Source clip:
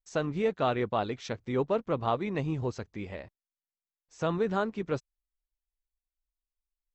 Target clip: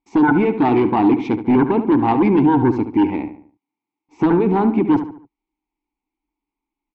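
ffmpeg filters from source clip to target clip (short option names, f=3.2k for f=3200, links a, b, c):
-filter_complex "[0:a]tiltshelf=f=1.5k:g=6.5,apsyclip=22dB,asplit=3[a][b][c];[a]bandpass=f=300:t=q:w=8,volume=0dB[d];[b]bandpass=f=870:t=q:w=8,volume=-6dB[e];[c]bandpass=f=2.24k:t=q:w=8,volume=-9dB[f];[d][e][f]amix=inputs=3:normalize=0,aeval=exprs='0.708*(cos(1*acos(clip(val(0)/0.708,-1,1)))-cos(1*PI/2))+0.282*(cos(3*acos(clip(val(0)/0.708,-1,1)))-cos(3*PI/2))+0.0224*(cos(4*acos(clip(val(0)/0.708,-1,1)))-cos(4*PI/2))+0.355*(cos(5*acos(clip(val(0)/0.708,-1,1)))-cos(5*PI/2))+0.0178*(cos(6*acos(clip(val(0)/0.708,-1,1)))-cos(6*PI/2))':c=same,asplit=2[g][h];[h]adelay=72,lowpass=f=2.7k:p=1,volume=-10dB,asplit=2[i][j];[j]adelay=72,lowpass=f=2.7k:p=1,volume=0.42,asplit=2[k][l];[l]adelay=72,lowpass=f=2.7k:p=1,volume=0.42,asplit=2[m][n];[n]adelay=72,lowpass=f=2.7k:p=1,volume=0.42[o];[i][k][m][o]amix=inputs=4:normalize=0[p];[g][p]amix=inputs=2:normalize=0,volume=-1dB"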